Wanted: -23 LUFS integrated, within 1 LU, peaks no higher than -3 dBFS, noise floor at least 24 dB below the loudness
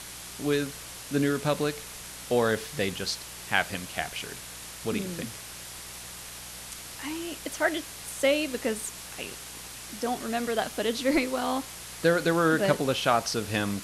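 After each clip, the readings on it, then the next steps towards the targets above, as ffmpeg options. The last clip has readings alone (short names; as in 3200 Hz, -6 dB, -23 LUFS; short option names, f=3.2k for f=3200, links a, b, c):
hum 60 Hz; harmonics up to 180 Hz; hum level -52 dBFS; noise floor -42 dBFS; noise floor target -54 dBFS; loudness -29.5 LUFS; peak -7.5 dBFS; loudness target -23.0 LUFS
-> -af "bandreject=f=60:t=h:w=4,bandreject=f=120:t=h:w=4,bandreject=f=180:t=h:w=4"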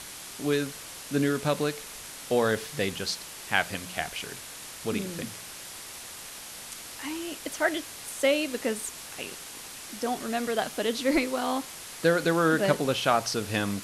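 hum none; noise floor -43 dBFS; noise floor target -53 dBFS
-> -af "afftdn=nr=10:nf=-43"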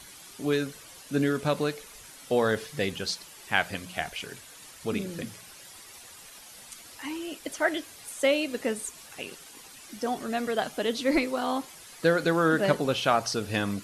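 noise floor -49 dBFS; noise floor target -53 dBFS
-> -af "afftdn=nr=6:nf=-49"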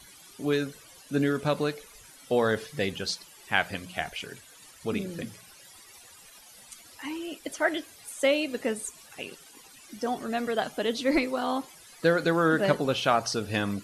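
noise floor -52 dBFS; noise floor target -53 dBFS
-> -af "afftdn=nr=6:nf=-52"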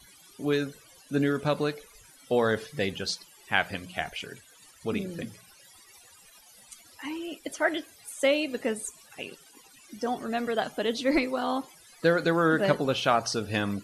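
noise floor -56 dBFS; loudness -28.5 LUFS; peak -7.0 dBFS; loudness target -23.0 LUFS
-> -af "volume=5.5dB,alimiter=limit=-3dB:level=0:latency=1"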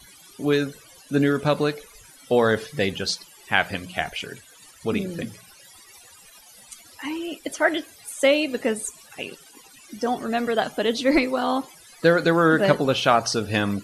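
loudness -23.0 LUFS; peak -3.0 dBFS; noise floor -50 dBFS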